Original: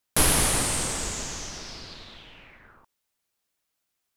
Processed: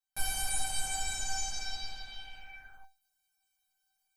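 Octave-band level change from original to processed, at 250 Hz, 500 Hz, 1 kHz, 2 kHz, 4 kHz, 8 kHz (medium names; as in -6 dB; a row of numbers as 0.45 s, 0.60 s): -24.5 dB, -23.0 dB, -7.5 dB, -7.5 dB, -7.0 dB, -9.0 dB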